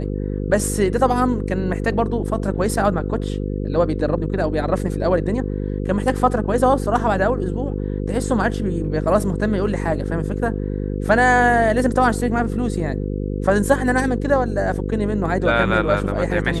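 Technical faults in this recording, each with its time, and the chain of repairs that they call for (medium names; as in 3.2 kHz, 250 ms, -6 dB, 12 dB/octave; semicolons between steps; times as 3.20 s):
buzz 50 Hz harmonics 10 -24 dBFS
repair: de-hum 50 Hz, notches 10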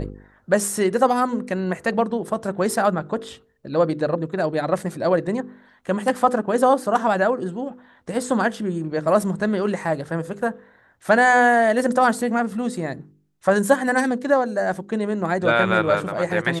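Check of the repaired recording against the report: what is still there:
nothing left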